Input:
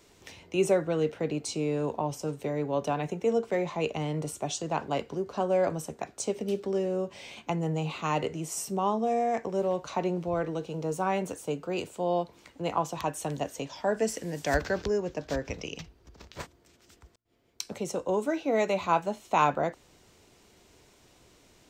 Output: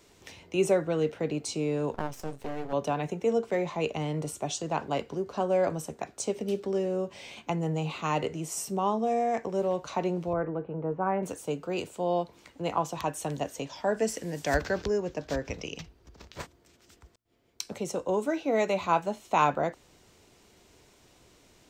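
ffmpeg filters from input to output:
-filter_complex "[0:a]asettb=1/sr,asplit=3[a][b][c];[a]atrim=end=1.944[d];[b]atrim=start=1.94:end=2.73,asetpts=PTS-STARTPTS,afade=t=in:d=0.004:c=qsin,afade=t=out:st=0.786:d=0.004:c=qsin,aeval=exprs='max(val(0),0)':c=same[e];[c]atrim=start=2.726[f];[d][e]acrossfade=d=0.004:c1=hsin:c2=qsin[g];[g][f]acrossfade=d=0.004:c1=qsin:c2=hsin,asettb=1/sr,asplit=3[h][i][j];[h]atrim=end=10.334[k];[i]atrim=start=10.33:end=11.23,asetpts=PTS-STARTPTS,afade=t=in:d=0.004:c=qsin,afade=t=out:st=0.896:d=0.004:c=qsin,lowpass=f=1.8k:w=0.5412,lowpass=f=1.8k:w=1.3066[l];[j]atrim=start=11.226[m];[k][l]acrossfade=d=0.004:c1=hsin:c2=qsin[n];[n][m]acrossfade=d=0.004:c1=qsin:c2=hsin"

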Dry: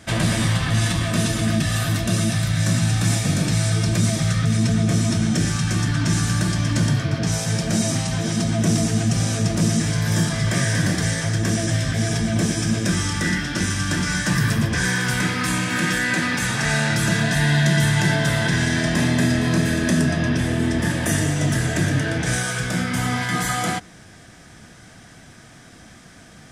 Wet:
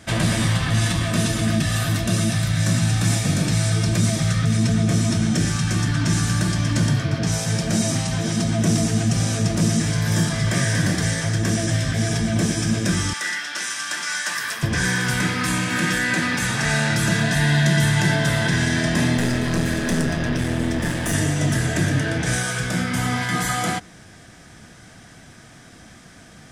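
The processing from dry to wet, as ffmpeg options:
-filter_complex "[0:a]asettb=1/sr,asplit=3[a][b][c];[a]atrim=end=13.134[d];[b]atrim=start=13.13:end=14.63,asetpts=PTS-STARTPTS,afade=t=in:d=0.004:c=qsin,afade=t=out:st=1.496:d=0.004:c=qsin,highpass=840[e];[c]atrim=start=14.626[f];[d][e]acrossfade=d=0.004:c1=hsin:c2=qsin[g];[g][f]acrossfade=d=0.004:c1=qsin:c2=hsin,asettb=1/sr,asplit=3[h][i][j];[h]atrim=end=19.174[k];[i]atrim=start=19.17:end=21.14,asetpts=PTS-STARTPTS,afade=t=in:d=0.004:c=qsin,afade=t=out:st=1.966:d=0.004:c=qsin,aeval=exprs='clip(val(0),-1,0.0631)':c=same[l];[j]atrim=start=21.136[m];[k][l]acrossfade=d=0.004:c1=hsin:c2=qsin[n];[n][m]acrossfade=d=0.004:c1=qsin:c2=hsin"

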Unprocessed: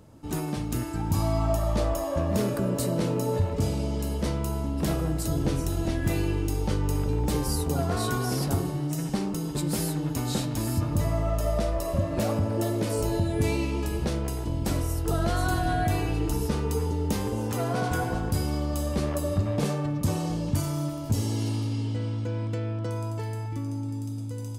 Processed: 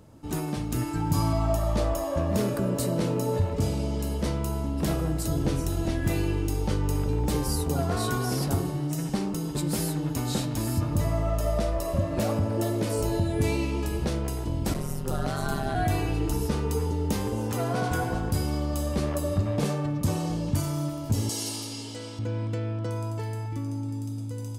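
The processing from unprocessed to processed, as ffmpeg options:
-filter_complex "[0:a]asettb=1/sr,asplit=3[a][b][c];[a]atrim=end=0.774[d];[b]atrim=start=0.77:end=1.33,asetpts=PTS-STARTPTS,afade=t=in:d=0.004:c=qsin,afade=t=out:st=0.556:d=0.004:c=qsin,aecho=1:1:6.9:0.65,atrim=end_sample=24696[e];[c]atrim=start=1.326[f];[d][e]acrossfade=d=0.004:c1=hsin:c2=qsin[g];[g][f]acrossfade=d=0.004:c1=qsin:c2=hsin,asplit=3[h][i][j];[h]afade=t=out:st=14.73:d=0.02[k];[i]aeval=exprs='val(0)*sin(2*PI*71*n/s)':c=same,afade=t=in:st=14.73:d=0.02,afade=t=out:st=15.74:d=0.02[l];[j]afade=t=in:st=15.74:d=0.02[m];[k][l][m]amix=inputs=3:normalize=0,asettb=1/sr,asplit=3[n][o][p];[n]atrim=end=21.294[q];[o]atrim=start=21.29:end=22.19,asetpts=PTS-STARTPTS,afade=t=in:d=0.004:c=qsin,afade=t=out:st=0.896:d=0.004:c=qsin,bass=f=250:g=-15,treble=f=4k:g=13[r];[p]atrim=start=22.186[s];[q][r]acrossfade=d=0.004:c1=hsin:c2=qsin[t];[t][s]acrossfade=d=0.004:c1=qsin:c2=hsin"

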